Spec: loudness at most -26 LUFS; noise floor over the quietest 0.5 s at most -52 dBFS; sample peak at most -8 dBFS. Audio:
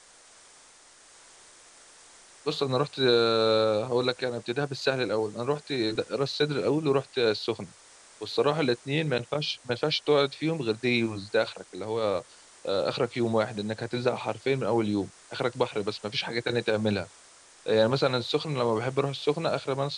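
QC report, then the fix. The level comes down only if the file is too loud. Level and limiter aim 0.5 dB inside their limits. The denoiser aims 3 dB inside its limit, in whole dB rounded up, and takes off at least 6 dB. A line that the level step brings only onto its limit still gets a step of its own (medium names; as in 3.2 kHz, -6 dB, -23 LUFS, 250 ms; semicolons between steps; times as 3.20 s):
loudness -27.5 LUFS: pass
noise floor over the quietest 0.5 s -55 dBFS: pass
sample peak -10.5 dBFS: pass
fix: none needed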